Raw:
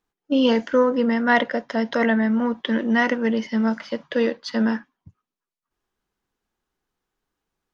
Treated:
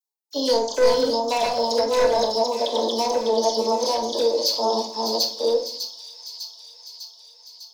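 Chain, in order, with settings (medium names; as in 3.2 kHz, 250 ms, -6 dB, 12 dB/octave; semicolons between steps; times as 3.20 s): chunks repeated in reverse 692 ms, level -0.5 dB; elliptic band-stop 970–4000 Hz, stop band 40 dB; gate with hold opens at -33 dBFS; high-pass 360 Hz 24 dB/octave; tilt EQ +4 dB/octave; overload inside the chain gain 21 dB; phase dispersion lows, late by 42 ms, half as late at 2.4 kHz; compression 2.5:1, threshold -28 dBFS, peak gain reduction 5.5 dB; feedback echo behind a high-pass 601 ms, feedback 64%, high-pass 3.1 kHz, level -7 dB; on a send at -2 dB: reverberation RT60 0.50 s, pre-delay 5 ms; on the sum: trim +7.5 dB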